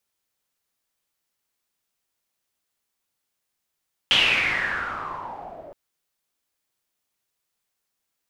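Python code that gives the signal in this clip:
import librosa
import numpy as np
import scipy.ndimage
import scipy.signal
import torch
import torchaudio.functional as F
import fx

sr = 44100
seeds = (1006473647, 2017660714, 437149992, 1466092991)

y = fx.riser_noise(sr, seeds[0], length_s=1.62, colour='white', kind='lowpass', start_hz=3200.0, end_hz=570.0, q=7.1, swell_db=-18, law='exponential')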